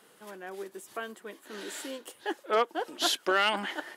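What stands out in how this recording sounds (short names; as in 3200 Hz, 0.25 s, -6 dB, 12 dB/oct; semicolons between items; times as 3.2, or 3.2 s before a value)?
noise floor -60 dBFS; spectral tilt -1.5 dB/oct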